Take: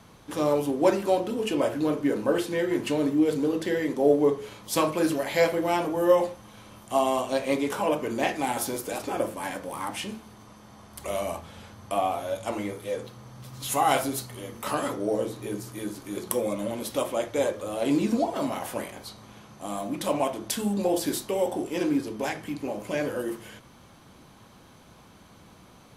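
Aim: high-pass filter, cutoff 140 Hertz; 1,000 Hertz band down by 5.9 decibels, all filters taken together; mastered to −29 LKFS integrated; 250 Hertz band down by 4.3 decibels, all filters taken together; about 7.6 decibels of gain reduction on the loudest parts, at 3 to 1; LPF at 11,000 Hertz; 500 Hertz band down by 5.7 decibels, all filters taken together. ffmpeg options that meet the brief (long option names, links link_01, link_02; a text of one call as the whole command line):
ffmpeg -i in.wav -af "highpass=140,lowpass=11000,equalizer=frequency=250:width_type=o:gain=-3,equalizer=frequency=500:width_type=o:gain=-4.5,equalizer=frequency=1000:width_type=o:gain=-6,acompressor=threshold=-31dB:ratio=3,volume=6.5dB" out.wav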